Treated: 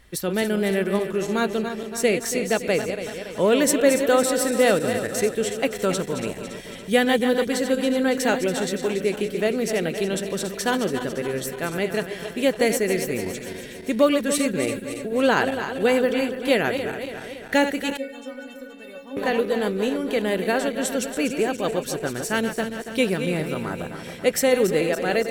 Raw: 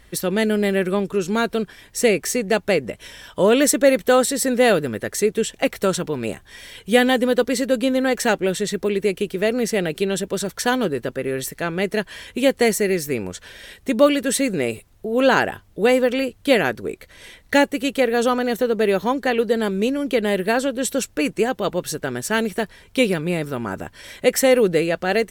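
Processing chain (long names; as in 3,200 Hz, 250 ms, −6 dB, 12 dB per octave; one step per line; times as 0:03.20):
feedback delay that plays each chunk backwards 141 ms, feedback 75%, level −9 dB
0:17.97–0:19.17: stiff-string resonator 270 Hz, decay 0.26 s, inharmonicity 0.008
level −3.5 dB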